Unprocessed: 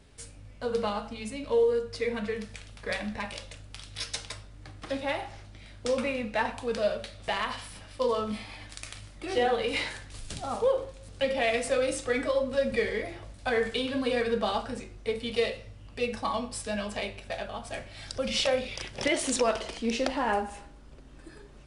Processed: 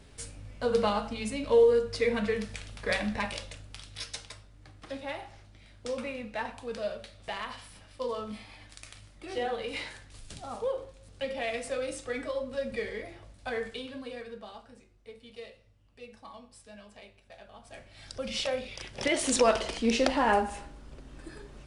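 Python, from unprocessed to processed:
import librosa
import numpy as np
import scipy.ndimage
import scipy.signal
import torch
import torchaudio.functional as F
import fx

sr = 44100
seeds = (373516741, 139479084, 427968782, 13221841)

y = fx.gain(x, sr, db=fx.line((3.24, 3.0), (4.33, -6.5), (13.55, -6.5), (14.5, -17.5), (17.26, -17.5), (18.13, -5.0), (18.75, -5.0), (19.46, 3.0)))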